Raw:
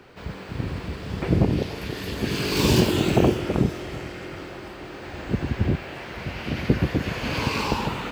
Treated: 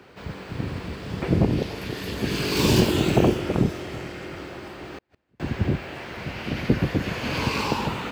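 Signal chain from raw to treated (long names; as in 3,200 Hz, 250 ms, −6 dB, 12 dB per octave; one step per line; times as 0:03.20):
sub-octave generator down 2 octaves, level −5 dB
high-pass filter 78 Hz 12 dB per octave
0:04.86–0:05.40: gate with flip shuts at −27 dBFS, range −40 dB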